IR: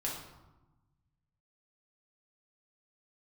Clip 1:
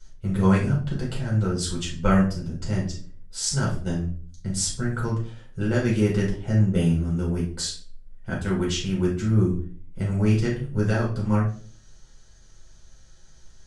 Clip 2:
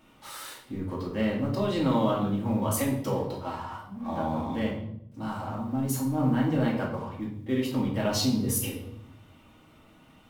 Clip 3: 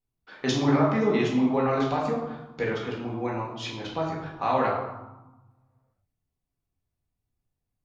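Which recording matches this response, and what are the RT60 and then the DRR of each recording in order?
3; 0.45 s, 0.70 s, 1.1 s; -4.5 dB, -4.0 dB, -4.0 dB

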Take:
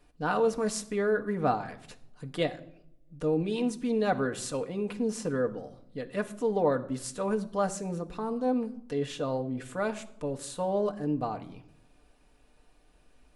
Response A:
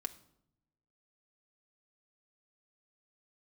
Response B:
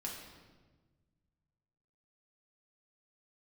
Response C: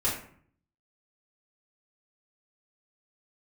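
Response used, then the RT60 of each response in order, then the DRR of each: A; no single decay rate, 1.3 s, 0.55 s; 4.5 dB, -3.0 dB, -6.5 dB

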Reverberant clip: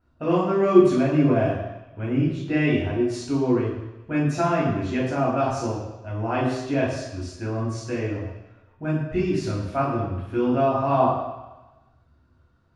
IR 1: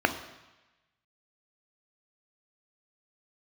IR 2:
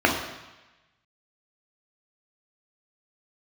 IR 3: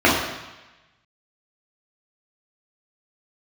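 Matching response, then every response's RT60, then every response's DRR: 3; 1.1 s, 1.1 s, 1.1 s; 7.5 dB, 0.0 dB, -6.5 dB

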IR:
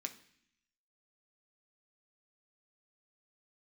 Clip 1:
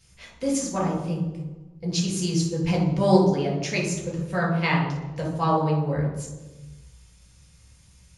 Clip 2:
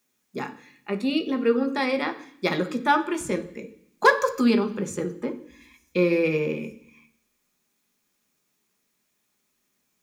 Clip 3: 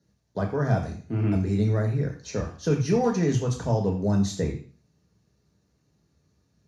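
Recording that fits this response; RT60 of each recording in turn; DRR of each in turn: 2; 1.2 s, 0.60 s, 0.40 s; -2.5 dB, 4.5 dB, 1.0 dB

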